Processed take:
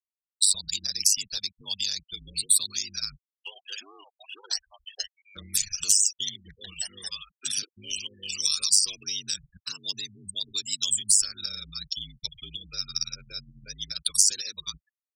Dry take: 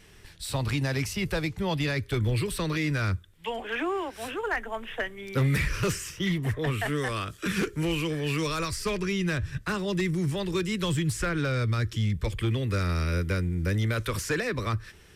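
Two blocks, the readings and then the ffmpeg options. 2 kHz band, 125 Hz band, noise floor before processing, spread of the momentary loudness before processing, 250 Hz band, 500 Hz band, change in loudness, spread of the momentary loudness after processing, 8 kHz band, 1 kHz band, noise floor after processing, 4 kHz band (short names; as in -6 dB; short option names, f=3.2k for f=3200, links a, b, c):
-13.0 dB, -25.0 dB, -53 dBFS, 5 LU, -23.5 dB, -25.5 dB, +2.5 dB, 19 LU, +16.5 dB, -19.5 dB, under -85 dBFS, +9.0 dB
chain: -filter_complex "[0:a]adynamicequalizer=threshold=0.00891:dfrequency=350:dqfactor=0.81:tfrequency=350:tqfactor=0.81:attack=5:release=100:ratio=0.375:range=2:mode=cutabove:tftype=bell,aeval=exprs='val(0)*sin(2*PI*50*n/s)':c=same,aemphasis=mode=reproduction:type=50kf,acrossover=split=130|7200[a][b][c];[a]aecho=1:1:239:0.15[d];[b]asoftclip=type=tanh:threshold=-27dB[e];[d][e][c]amix=inputs=3:normalize=0,crystalizer=i=9.5:c=0,aeval=exprs='0.299*(cos(1*acos(clip(val(0)/0.299,-1,1)))-cos(1*PI/2))+0.00473*(cos(3*acos(clip(val(0)/0.299,-1,1)))-cos(3*PI/2))+0.00596*(cos(4*acos(clip(val(0)/0.299,-1,1)))-cos(4*PI/2))+0.00376*(cos(6*acos(clip(val(0)/0.299,-1,1)))-cos(6*PI/2))+0.0237*(cos(7*acos(clip(val(0)/0.299,-1,1)))-cos(7*PI/2))':c=same,agate=range=-8dB:threshold=-48dB:ratio=16:detection=peak,afftfilt=real='re*gte(hypot(re,im),0.0316)':imag='im*gte(hypot(re,im),0.0316)':win_size=1024:overlap=0.75,acompressor=threshold=-42dB:ratio=2,aexciter=amount=12.1:drive=8.9:freq=3.3k,volume=-7.5dB"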